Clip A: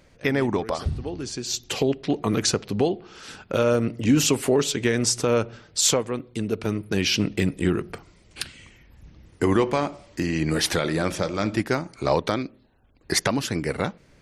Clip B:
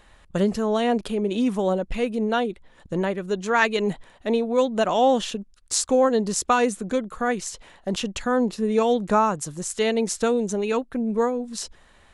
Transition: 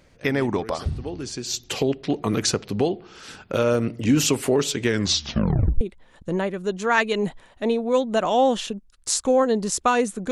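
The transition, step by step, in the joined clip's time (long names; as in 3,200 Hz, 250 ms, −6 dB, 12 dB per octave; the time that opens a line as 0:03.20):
clip A
0:04.88: tape stop 0.93 s
0:05.81: continue with clip B from 0:02.45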